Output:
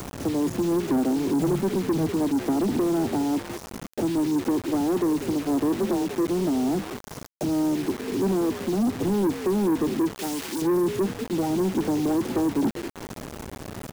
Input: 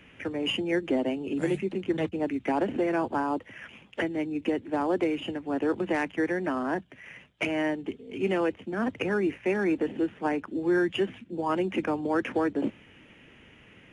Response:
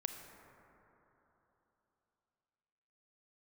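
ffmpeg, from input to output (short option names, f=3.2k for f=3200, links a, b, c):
-filter_complex "[0:a]equalizer=f=550:w=2.8:g=-8,acrossover=split=340[a][b];[b]acompressor=threshold=-37dB:ratio=8[c];[a][c]amix=inputs=2:normalize=0,asuperstop=centerf=2100:order=20:qfactor=0.51,asplit=3[d][e][f];[d]afade=t=out:st=5.74:d=0.02[g];[e]afreqshift=21,afade=t=in:st=5.74:d=0.02,afade=t=out:st=6.25:d=0.02[h];[f]afade=t=in:st=6.25:d=0.02[i];[g][h][i]amix=inputs=3:normalize=0,asplit=2[j][k];[k]acompressor=mode=upward:threshold=-33dB:ratio=2.5,volume=-2.5dB[l];[j][l]amix=inputs=2:normalize=0,asplit=4[m][n][o][p];[n]adelay=195,afreqshift=60,volume=-16dB[q];[o]adelay=390,afreqshift=120,volume=-26.2dB[r];[p]adelay=585,afreqshift=180,volume=-36.3dB[s];[m][q][r][s]amix=inputs=4:normalize=0,acrusher=bits=6:mix=0:aa=0.000001,asoftclip=type=tanh:threshold=-26dB,asettb=1/sr,asplit=3[t][u][v];[t]atrim=end=10.154[w];[u]atrim=start=10.15:end=10.62,asetpts=PTS-STARTPTS,afade=t=in:d=0.004:c=qsin,afade=t=out:st=0.466:d=0.004:c=qsin,tiltshelf=f=1.3k:g=-7.5[x];[v]atrim=start=10.616[y];[w][x]acrossfade=d=0.004:c1=hsin:c2=qsin[z];[z][y]acrossfade=d=0.004:c1=qsin:c2=hsin,volume=7.5dB"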